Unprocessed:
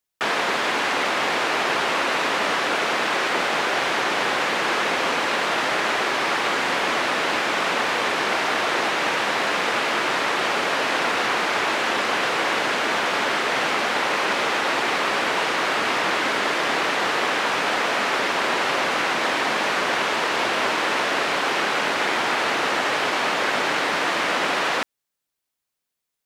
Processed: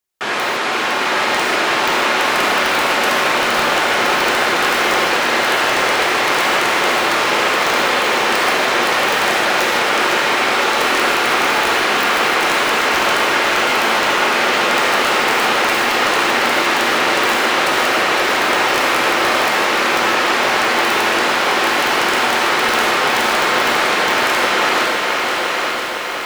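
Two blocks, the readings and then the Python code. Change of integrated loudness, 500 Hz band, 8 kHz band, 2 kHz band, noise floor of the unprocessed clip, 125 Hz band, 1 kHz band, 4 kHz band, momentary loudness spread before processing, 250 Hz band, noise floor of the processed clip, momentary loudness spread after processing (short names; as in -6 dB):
+7.0 dB, +6.5 dB, +8.5 dB, +7.0 dB, -82 dBFS, +6.0 dB, +7.0 dB, +7.5 dB, 0 LU, +7.0 dB, -19 dBFS, 1 LU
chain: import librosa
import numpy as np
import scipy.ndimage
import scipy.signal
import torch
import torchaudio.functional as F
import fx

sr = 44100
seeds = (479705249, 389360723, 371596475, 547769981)

y = fx.echo_thinned(x, sr, ms=864, feedback_pct=20, hz=220.0, wet_db=-3.5)
y = (np.mod(10.0 ** (10.0 / 20.0) * y + 1.0, 2.0) - 1.0) / 10.0 ** (10.0 / 20.0)
y = fx.rev_gated(y, sr, seeds[0], gate_ms=180, shape='flat', drr_db=-1.5)
y = fx.echo_crushed(y, sr, ms=508, feedback_pct=80, bits=6, wet_db=-6.5)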